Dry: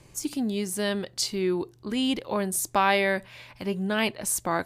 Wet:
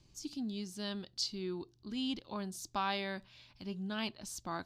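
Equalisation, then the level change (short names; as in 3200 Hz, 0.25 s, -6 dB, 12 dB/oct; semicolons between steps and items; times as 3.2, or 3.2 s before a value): resonant high shelf 7000 Hz -13 dB, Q 1.5; dynamic EQ 1100 Hz, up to +6 dB, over -38 dBFS, Q 1.1; graphic EQ 125/500/1000/2000 Hz -5/-12/-6/-12 dB; -7.0 dB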